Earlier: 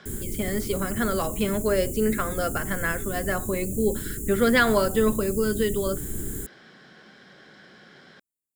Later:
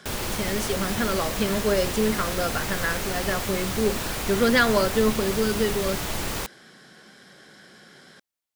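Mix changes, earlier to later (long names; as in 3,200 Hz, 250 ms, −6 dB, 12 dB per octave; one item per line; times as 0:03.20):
speech: remove low-pass filter 4,200 Hz 12 dB per octave
background: remove Chebyshev band-stop filter 420–7,100 Hz, order 5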